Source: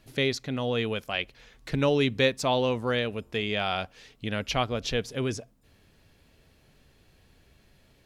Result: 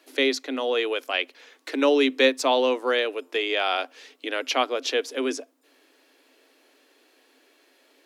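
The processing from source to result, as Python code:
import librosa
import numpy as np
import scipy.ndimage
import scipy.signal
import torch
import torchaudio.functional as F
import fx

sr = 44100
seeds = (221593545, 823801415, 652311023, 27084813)

y = scipy.signal.sosfilt(scipy.signal.cheby1(8, 1.0, 260.0, 'highpass', fs=sr, output='sos'), x)
y = y * 10.0 ** (5.0 / 20.0)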